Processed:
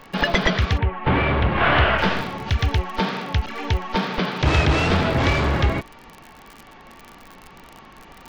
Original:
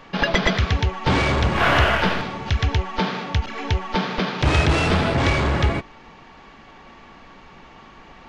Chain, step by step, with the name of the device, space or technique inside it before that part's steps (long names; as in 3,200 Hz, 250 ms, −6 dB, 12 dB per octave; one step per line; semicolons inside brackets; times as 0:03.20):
lo-fi chain (low-pass filter 6,900 Hz 12 dB per octave; tape wow and flutter; surface crackle 49 per second −29 dBFS)
0:00.77–0:01.97: low-pass filter 2,400 Hz → 4,100 Hz 24 dB per octave